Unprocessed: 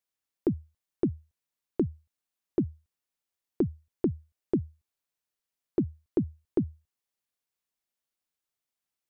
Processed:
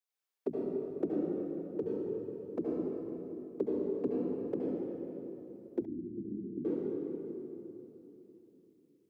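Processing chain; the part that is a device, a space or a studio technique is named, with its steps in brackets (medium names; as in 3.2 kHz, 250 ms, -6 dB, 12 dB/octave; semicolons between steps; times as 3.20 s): whispering ghost (whisper effect; high-pass 320 Hz 12 dB/octave; reverberation RT60 3.3 s, pre-delay 67 ms, DRR -5 dB); 5.85–6.65 s: inverse Chebyshev low-pass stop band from 580 Hz, stop band 40 dB; trim -6 dB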